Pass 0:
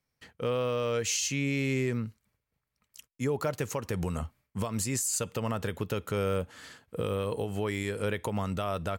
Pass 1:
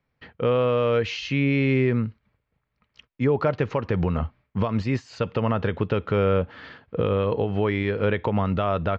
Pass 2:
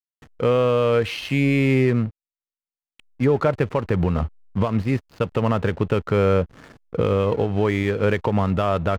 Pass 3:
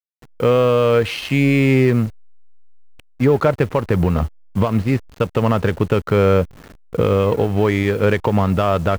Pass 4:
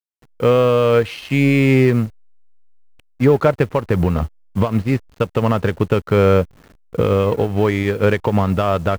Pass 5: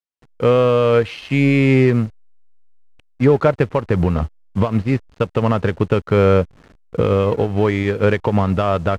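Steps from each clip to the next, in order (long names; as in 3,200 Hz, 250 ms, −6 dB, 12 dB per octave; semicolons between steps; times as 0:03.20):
Bessel low-pass filter 2,500 Hz, order 8; level +8.5 dB
slack as between gear wheels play −34 dBFS; level +3 dB
hold until the input has moved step −41.5 dBFS; level +4 dB
expander for the loud parts 1.5 to 1, over −28 dBFS; level +2 dB
high-frequency loss of the air 52 metres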